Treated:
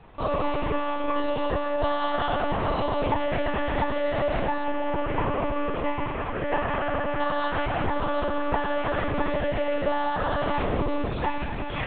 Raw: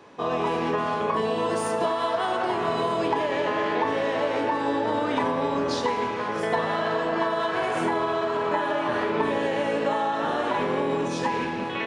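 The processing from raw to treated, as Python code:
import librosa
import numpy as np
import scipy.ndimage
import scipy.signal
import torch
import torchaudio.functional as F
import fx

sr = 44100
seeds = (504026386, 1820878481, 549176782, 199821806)

y = fx.cvsd(x, sr, bps=16000, at=(4.64, 7.2))
y = fx.doubler(y, sr, ms=38.0, db=-11.5)
y = fx.lpc_monotone(y, sr, seeds[0], pitch_hz=290.0, order=10)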